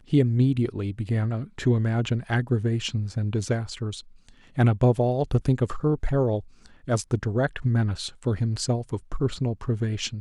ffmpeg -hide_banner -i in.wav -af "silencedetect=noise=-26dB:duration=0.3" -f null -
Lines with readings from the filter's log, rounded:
silence_start: 3.99
silence_end: 4.58 | silence_duration: 0.59
silence_start: 6.39
silence_end: 6.88 | silence_duration: 0.49